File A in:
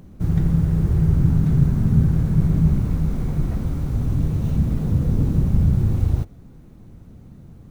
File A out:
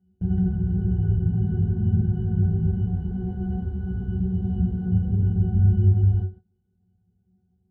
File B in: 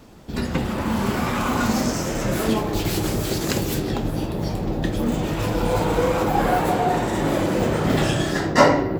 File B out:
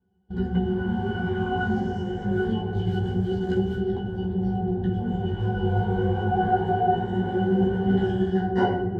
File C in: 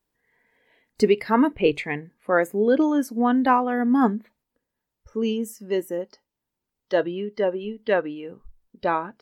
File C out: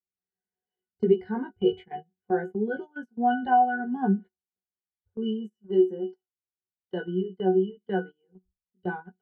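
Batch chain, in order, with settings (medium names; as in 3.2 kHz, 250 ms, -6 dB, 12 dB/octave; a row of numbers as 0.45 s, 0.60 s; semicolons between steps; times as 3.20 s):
pitch-class resonator F#, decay 0.21 s; chorus 0.25 Hz, delay 15.5 ms, depth 3.8 ms; gate -48 dBFS, range -20 dB; peak normalisation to -9 dBFS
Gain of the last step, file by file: +10.5 dB, +12.5 dB, +12.0 dB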